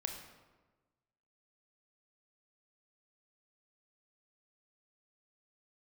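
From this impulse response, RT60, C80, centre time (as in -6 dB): 1.3 s, 7.5 dB, 34 ms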